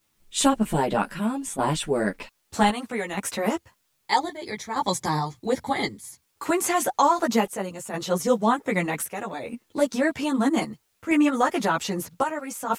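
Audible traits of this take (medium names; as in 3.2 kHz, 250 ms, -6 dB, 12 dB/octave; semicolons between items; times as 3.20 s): chopped level 0.63 Hz, depth 60%, duty 70%; a quantiser's noise floor 12-bit, dither triangular; a shimmering, thickened sound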